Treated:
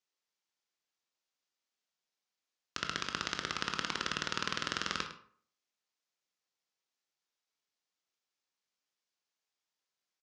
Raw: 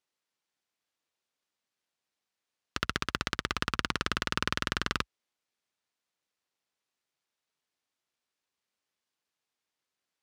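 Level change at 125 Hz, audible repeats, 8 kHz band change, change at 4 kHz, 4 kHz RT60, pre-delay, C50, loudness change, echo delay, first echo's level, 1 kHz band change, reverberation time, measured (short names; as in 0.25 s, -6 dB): -9.5 dB, 1, -1.0 dB, -2.5 dB, 0.30 s, 17 ms, 8.5 dB, -3.5 dB, 0.105 s, -14.0 dB, -4.0 dB, 0.55 s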